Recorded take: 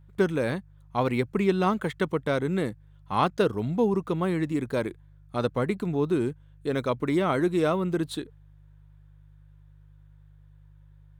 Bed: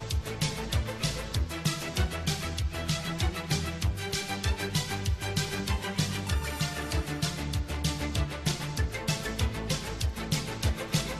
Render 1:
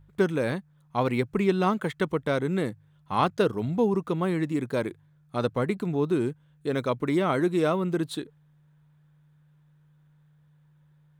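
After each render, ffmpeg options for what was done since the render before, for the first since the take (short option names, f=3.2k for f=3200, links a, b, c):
-af "bandreject=f=50:t=h:w=4,bandreject=f=100:t=h:w=4"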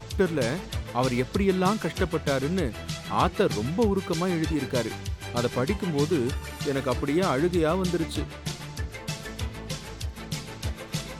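-filter_complex "[1:a]volume=-3.5dB[a];[0:a][a]amix=inputs=2:normalize=0"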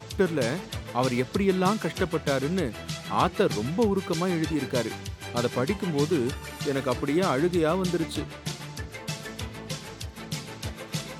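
-af "highpass=100"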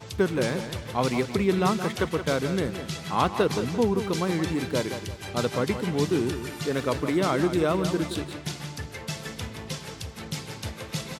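-af "aecho=1:1:173|346|519|692:0.316|0.12|0.0457|0.0174"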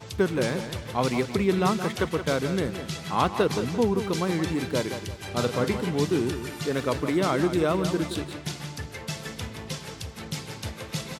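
-filter_complex "[0:a]asettb=1/sr,asplit=3[a][b][c];[a]atrim=end=5.274[d];[b]atrim=start=5.27:end=5.89,asetpts=PTS-STARTPTS,afade=t=in:d=0.004:c=qsin,afade=t=out:st=0.616:d=0.004:c=qsin,asplit=2[e][f];[f]adelay=41,volume=-9dB[g];[e][g]amix=inputs=2:normalize=0,atrim=end_sample=27342[h];[c]atrim=start=5.886[i];[d][h]acrossfade=d=0.004:c1=hsin:c2=qsin[j];[j][i]acrossfade=d=0.004:c1=qsin:c2=hsin"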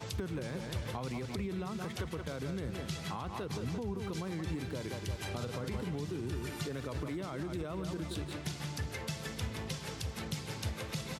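-filter_complex "[0:a]alimiter=limit=-20dB:level=0:latency=1:release=45,acrossover=split=120[a][b];[b]acompressor=threshold=-38dB:ratio=6[c];[a][c]amix=inputs=2:normalize=0"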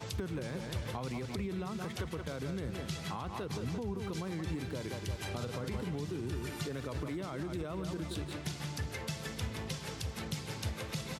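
-af anull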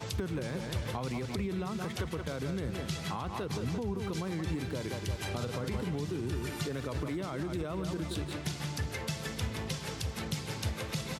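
-af "volume=3dB"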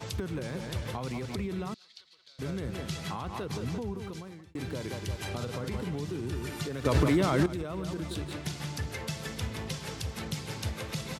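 -filter_complex "[0:a]asettb=1/sr,asplit=3[a][b][c];[a]atrim=end=1.744[d];[b]atrim=start=1.74:end=2.39,asetpts=PTS-STARTPTS,afade=t=in:d=0.004:c=qsin,afade=t=out:st=0.646:d=0.004:c=qsin,bandpass=f=4.3k:t=q:w=5.8[e];[c]atrim=start=2.386[f];[d][e]acrossfade=d=0.004:c1=hsin:c2=qsin[g];[g][f]acrossfade=d=0.004:c1=qsin:c2=hsin,asplit=4[h][i][j][k];[h]atrim=end=4.55,asetpts=PTS-STARTPTS,afade=t=out:st=3.79:d=0.76[l];[i]atrim=start=4.55:end=6.852,asetpts=PTS-STARTPTS,afade=t=in:d=0.004:c=hsin[m];[j]atrim=start=6.848:end=7.462,asetpts=PTS-STARTPTS,volume=11dB[n];[k]atrim=start=7.458[o];[l][m]concat=n=2:v=0:a=1[p];[p][n]acrossfade=d=0.004:c1=hsin:c2=hsin[q];[q][o]acrossfade=d=0.004:c1=hsin:c2=hsin"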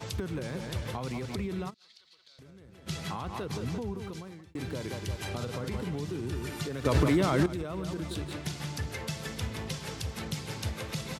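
-filter_complex "[0:a]asplit=3[a][b][c];[a]afade=t=out:st=1.69:d=0.02[d];[b]acompressor=threshold=-52dB:ratio=5:attack=3.2:release=140:knee=1:detection=peak,afade=t=in:st=1.69:d=0.02,afade=t=out:st=2.86:d=0.02[e];[c]afade=t=in:st=2.86:d=0.02[f];[d][e][f]amix=inputs=3:normalize=0"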